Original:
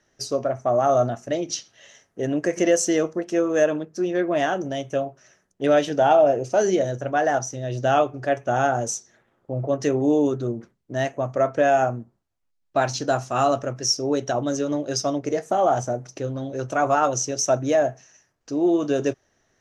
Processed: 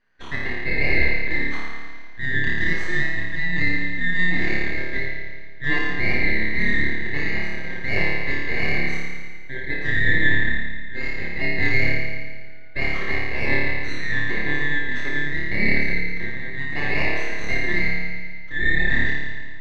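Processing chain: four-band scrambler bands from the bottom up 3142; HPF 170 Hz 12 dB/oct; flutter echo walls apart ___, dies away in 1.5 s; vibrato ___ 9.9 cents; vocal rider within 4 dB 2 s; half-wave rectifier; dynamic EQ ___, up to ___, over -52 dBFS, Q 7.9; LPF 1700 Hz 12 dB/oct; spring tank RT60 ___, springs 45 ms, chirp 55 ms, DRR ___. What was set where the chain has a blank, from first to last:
4.8 m, 10 Hz, 370 Hz, +5 dB, 2 s, 10.5 dB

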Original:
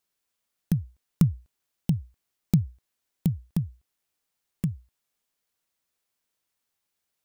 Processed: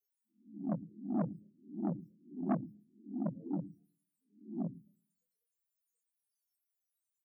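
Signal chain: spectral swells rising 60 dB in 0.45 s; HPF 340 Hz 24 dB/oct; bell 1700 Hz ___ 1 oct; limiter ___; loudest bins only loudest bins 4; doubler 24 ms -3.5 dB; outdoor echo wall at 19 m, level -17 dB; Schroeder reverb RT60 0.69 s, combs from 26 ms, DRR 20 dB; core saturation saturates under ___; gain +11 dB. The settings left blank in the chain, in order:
-13 dB, -21.5 dBFS, 580 Hz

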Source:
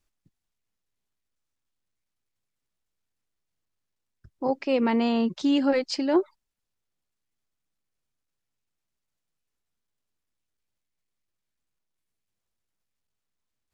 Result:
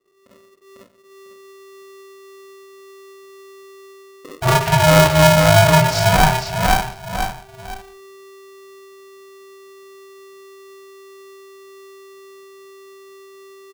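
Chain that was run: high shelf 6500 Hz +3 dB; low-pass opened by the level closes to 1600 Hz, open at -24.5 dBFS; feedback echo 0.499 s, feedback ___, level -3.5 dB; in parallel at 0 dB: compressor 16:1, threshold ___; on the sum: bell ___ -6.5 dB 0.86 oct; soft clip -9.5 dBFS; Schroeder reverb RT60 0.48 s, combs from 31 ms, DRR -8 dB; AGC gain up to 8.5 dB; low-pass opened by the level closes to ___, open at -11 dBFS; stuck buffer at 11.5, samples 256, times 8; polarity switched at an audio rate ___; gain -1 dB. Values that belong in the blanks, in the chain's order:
21%, -30 dBFS, 3700 Hz, 310 Hz, 390 Hz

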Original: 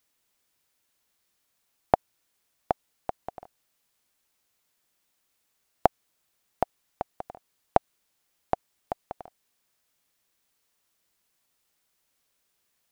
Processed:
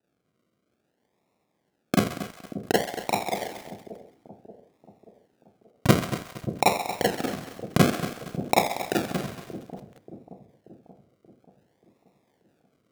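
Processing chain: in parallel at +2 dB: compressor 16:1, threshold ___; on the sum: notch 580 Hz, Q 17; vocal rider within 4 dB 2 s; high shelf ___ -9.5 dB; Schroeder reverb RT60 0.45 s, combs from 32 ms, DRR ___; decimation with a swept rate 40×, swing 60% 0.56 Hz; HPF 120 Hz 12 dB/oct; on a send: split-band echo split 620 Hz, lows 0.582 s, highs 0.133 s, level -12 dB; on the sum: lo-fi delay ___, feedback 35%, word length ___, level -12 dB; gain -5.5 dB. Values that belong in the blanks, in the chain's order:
-27 dBFS, 2100 Hz, -7 dB, 0.232 s, 5-bit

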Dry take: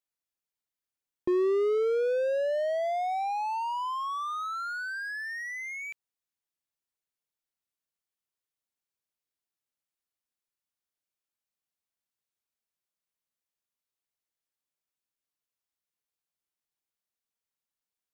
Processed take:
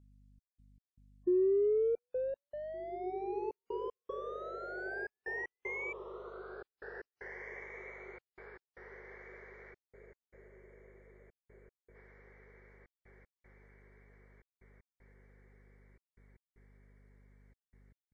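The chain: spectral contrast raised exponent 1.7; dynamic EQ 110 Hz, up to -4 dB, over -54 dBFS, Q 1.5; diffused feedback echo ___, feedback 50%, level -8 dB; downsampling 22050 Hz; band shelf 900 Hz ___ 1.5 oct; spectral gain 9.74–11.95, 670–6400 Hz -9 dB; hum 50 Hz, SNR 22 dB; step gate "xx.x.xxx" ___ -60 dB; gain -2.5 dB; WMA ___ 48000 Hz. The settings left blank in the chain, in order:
1.987 s, -11.5 dB, 77 bpm, 64 kbps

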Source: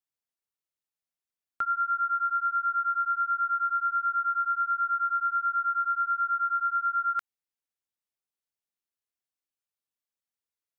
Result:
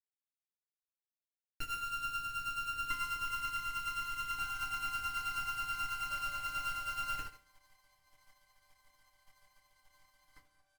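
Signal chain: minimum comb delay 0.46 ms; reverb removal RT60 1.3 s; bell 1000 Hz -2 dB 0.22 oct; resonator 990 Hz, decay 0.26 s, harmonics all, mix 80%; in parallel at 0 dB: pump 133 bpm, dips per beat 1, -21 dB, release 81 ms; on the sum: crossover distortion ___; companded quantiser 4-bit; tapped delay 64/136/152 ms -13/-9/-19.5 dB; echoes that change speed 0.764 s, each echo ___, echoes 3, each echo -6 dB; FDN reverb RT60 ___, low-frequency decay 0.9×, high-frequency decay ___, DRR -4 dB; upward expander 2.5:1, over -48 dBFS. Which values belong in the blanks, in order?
-59.5 dBFS, -5 st, 0.74 s, 0.75×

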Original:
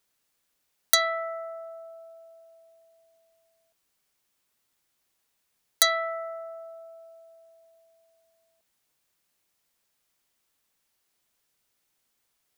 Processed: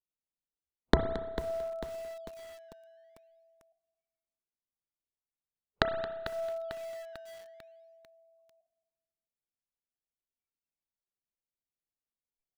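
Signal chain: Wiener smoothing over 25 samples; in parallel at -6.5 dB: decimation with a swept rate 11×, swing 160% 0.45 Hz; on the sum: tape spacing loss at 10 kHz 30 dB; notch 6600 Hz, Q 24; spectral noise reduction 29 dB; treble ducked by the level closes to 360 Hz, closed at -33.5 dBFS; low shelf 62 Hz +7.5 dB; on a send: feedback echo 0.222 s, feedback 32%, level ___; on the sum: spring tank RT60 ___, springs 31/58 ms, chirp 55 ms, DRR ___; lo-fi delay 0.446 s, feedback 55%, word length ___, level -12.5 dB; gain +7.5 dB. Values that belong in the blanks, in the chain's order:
-16 dB, 1.1 s, 11 dB, 8-bit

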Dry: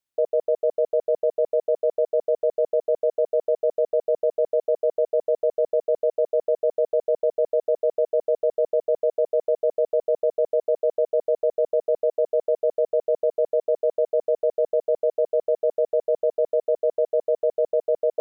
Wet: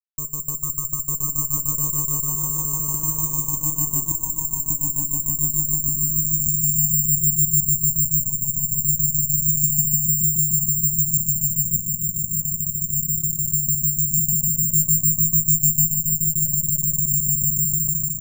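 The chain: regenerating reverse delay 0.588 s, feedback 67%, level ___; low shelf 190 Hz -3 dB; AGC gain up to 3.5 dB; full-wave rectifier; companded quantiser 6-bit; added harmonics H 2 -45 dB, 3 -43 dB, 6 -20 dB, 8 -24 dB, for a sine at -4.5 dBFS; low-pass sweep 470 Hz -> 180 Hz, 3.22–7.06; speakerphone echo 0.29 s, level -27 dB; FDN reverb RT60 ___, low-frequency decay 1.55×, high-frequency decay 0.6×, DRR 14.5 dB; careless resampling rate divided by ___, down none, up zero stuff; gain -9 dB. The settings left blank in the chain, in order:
-2 dB, 1.3 s, 6×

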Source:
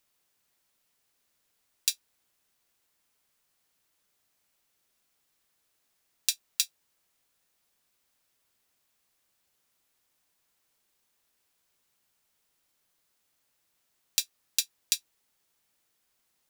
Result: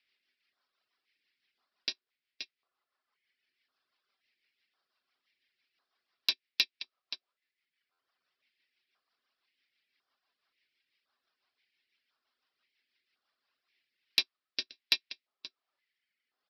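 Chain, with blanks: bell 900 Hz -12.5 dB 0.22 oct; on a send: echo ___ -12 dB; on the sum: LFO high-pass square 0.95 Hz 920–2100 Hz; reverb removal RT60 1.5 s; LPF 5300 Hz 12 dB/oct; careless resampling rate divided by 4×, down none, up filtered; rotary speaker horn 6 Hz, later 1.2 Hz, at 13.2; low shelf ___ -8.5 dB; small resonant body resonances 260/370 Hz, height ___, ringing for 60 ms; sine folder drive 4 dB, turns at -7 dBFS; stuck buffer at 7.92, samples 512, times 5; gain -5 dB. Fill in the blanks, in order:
0.527 s, 86 Hz, 10 dB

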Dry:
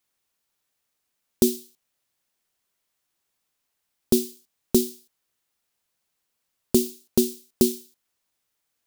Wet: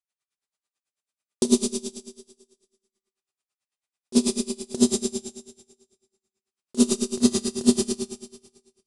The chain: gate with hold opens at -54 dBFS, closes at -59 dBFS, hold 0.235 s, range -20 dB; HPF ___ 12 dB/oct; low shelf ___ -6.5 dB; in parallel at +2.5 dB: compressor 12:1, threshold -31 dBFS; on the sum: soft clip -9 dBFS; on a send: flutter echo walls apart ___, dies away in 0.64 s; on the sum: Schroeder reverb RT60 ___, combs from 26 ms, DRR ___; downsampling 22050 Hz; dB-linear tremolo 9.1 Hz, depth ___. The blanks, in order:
47 Hz, 310 Hz, 4.9 m, 1.4 s, -5.5 dB, 23 dB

